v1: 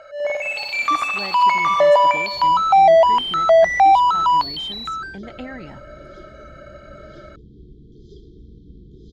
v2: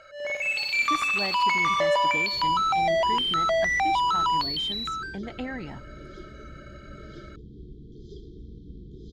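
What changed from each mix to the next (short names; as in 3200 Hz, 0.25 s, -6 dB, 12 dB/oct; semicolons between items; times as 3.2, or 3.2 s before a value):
first sound: add bell 720 Hz -13.5 dB 1.3 oct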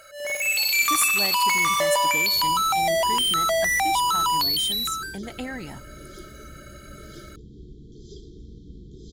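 master: remove air absorption 190 m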